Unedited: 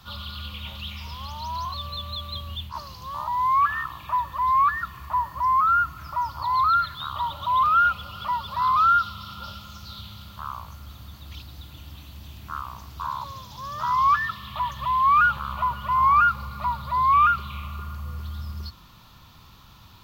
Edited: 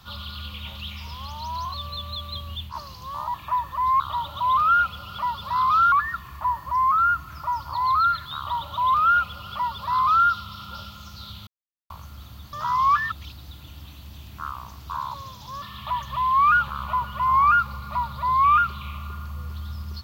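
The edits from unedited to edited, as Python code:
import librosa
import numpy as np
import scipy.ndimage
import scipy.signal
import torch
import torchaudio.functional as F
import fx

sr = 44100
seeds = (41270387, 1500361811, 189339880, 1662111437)

y = fx.edit(x, sr, fx.cut(start_s=3.34, length_s=0.61),
    fx.duplicate(start_s=7.06, length_s=1.92, to_s=4.61),
    fx.silence(start_s=10.16, length_s=0.43),
    fx.move(start_s=13.72, length_s=0.59, to_s=11.22), tone=tone)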